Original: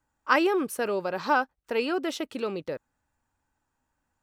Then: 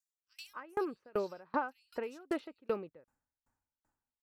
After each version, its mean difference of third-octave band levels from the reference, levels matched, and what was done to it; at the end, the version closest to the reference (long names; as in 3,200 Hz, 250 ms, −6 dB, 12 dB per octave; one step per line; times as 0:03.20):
13.0 dB: multiband delay without the direct sound highs, lows 270 ms, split 3,300 Hz
downward compressor 3 to 1, threshold −26 dBFS, peak gain reduction 7.5 dB
parametric band 3,300 Hz −5.5 dB 0.81 octaves
tremolo with a ramp in dB decaying 2.6 Hz, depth 33 dB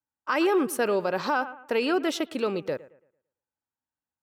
3.0 dB: noise gate with hold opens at −39 dBFS
bucket-brigade delay 112 ms, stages 2,048, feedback 33%, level −19 dB
brickwall limiter −19 dBFS, peak gain reduction 10.5 dB
high-pass filter 85 Hz
level +3.5 dB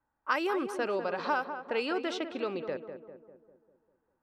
5.0 dB: low-pass that shuts in the quiet parts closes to 1,500 Hz, open at −20 dBFS
low-shelf EQ 280 Hz −8 dB
downward compressor 2.5 to 1, threshold −28 dBFS, peak gain reduction 8 dB
on a send: feedback echo with a low-pass in the loop 199 ms, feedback 53%, low-pass 1,400 Hz, level −8 dB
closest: second